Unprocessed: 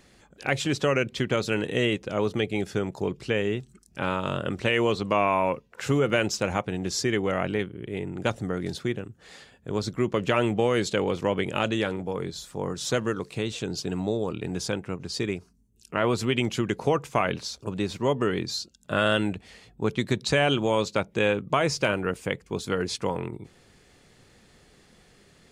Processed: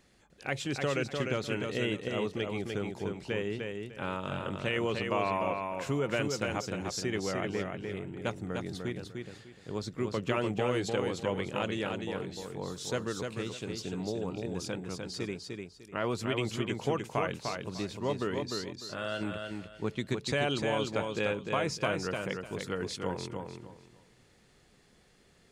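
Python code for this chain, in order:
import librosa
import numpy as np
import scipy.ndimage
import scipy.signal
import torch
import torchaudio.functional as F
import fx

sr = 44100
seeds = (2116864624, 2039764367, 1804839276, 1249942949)

y = fx.comb_fb(x, sr, f0_hz=58.0, decay_s=0.39, harmonics='all', damping=0.0, mix_pct=70, at=(18.76, 19.21))
y = fx.echo_feedback(y, sr, ms=300, feedback_pct=24, wet_db=-4.5)
y = y * librosa.db_to_amplitude(-8.0)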